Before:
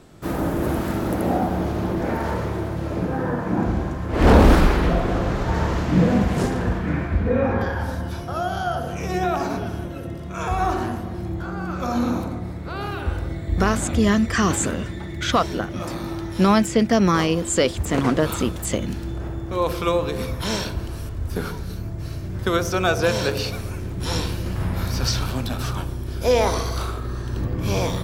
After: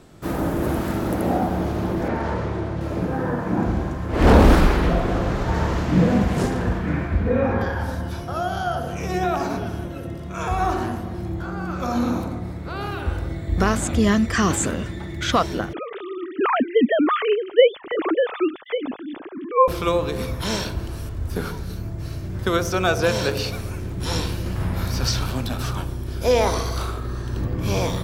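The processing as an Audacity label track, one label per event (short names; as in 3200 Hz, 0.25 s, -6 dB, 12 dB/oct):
2.080000	2.810000	air absorption 70 m
15.730000	19.680000	sine-wave speech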